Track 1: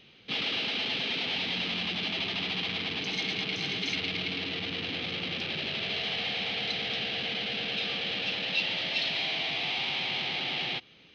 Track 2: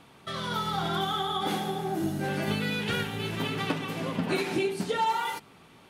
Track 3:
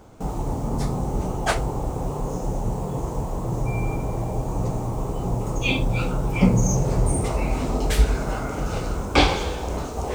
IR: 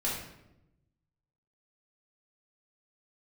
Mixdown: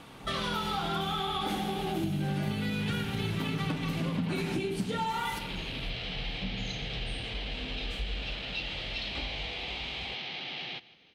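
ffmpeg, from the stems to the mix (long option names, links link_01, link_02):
-filter_complex "[0:a]volume=-6.5dB,asplit=2[link_01][link_02];[link_02]volume=-20.5dB[link_03];[1:a]asubboost=boost=3.5:cutoff=220,volume=2.5dB,asplit=2[link_04][link_05];[link_05]volume=-12dB[link_06];[2:a]highshelf=frequency=11000:gain=-9,acrossover=split=170[link_07][link_08];[link_08]acompressor=threshold=-30dB:ratio=2.5[link_09];[link_07][link_09]amix=inputs=2:normalize=0,flanger=delay=18.5:depth=3.9:speed=0.42,volume=-17dB,asplit=2[link_10][link_11];[link_11]volume=-10.5dB[link_12];[3:a]atrim=start_sample=2205[link_13];[link_06][link_12]amix=inputs=2:normalize=0[link_14];[link_14][link_13]afir=irnorm=-1:irlink=0[link_15];[link_03]aecho=0:1:161|322|483|644|805|966|1127:1|0.47|0.221|0.104|0.0488|0.0229|0.0108[link_16];[link_01][link_04][link_10][link_15][link_16]amix=inputs=5:normalize=0,acompressor=threshold=-29dB:ratio=6"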